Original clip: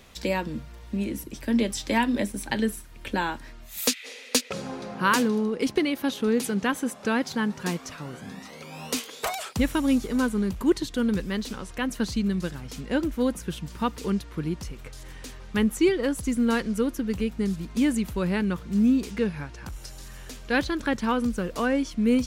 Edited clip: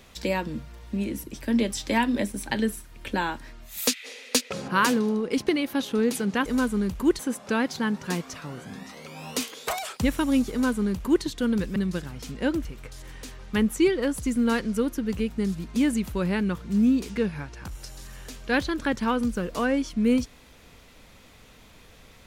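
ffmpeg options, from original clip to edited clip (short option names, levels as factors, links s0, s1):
-filter_complex "[0:a]asplit=6[s0][s1][s2][s3][s4][s5];[s0]atrim=end=4.682[s6];[s1]atrim=start=4.968:end=6.752[s7];[s2]atrim=start=10.068:end=10.802[s8];[s3]atrim=start=6.748:end=11.322[s9];[s4]atrim=start=12.248:end=13.142[s10];[s5]atrim=start=14.658[s11];[s6][s7]acrossfade=d=0.004:c1=hsin:c2=hsin[s12];[s12][s8]acrossfade=d=0.004:c1=hsin:c2=hsin[s13];[s13][s9]acrossfade=d=0.004:c1=hsin:c2=hsin[s14];[s14][s10]acrossfade=d=0.004:c1=hsin:c2=hsin[s15];[s15][s11]acrossfade=d=0.004:c1=hsin:c2=hsin"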